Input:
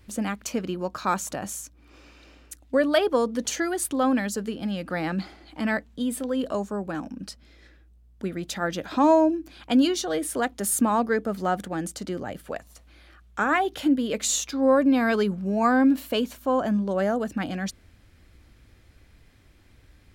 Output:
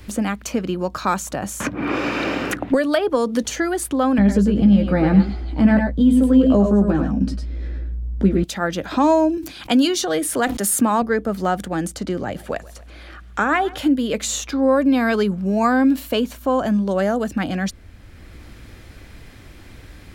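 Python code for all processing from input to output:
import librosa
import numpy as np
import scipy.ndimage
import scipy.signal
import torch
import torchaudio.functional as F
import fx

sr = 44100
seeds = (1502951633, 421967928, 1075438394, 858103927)

y = fx.chain(x, sr, fx.highpass(hz=84.0, slope=24),
    fx.band_squash(depth_pct=100), at=(1.6, 3.43))
y = fx.chain(y, sr, fx.tilt_eq(slope=-4.5),
    fx.doubler(ms=15.0, db=-5.5),
    fx.echo_multitap(ms=(98, 106), db=(-8.0, -8.0)), at=(4.18, 8.44))
y = fx.chain(y, sr, fx.highpass(hz=87.0, slope=24),
    fx.high_shelf(hz=2500.0, db=8.0),
    fx.sustainer(db_per_s=110.0), at=(9.37, 11.02))
y = fx.chain(y, sr, fx.high_shelf(hz=11000.0, db=-8.0),
    fx.echo_feedback(ms=131, feedback_pct=52, wet_db=-22), at=(11.97, 13.78))
y = fx.low_shelf(y, sr, hz=62.0, db=5.0)
y = fx.band_squash(y, sr, depth_pct=40)
y = y * 10.0 ** (3.5 / 20.0)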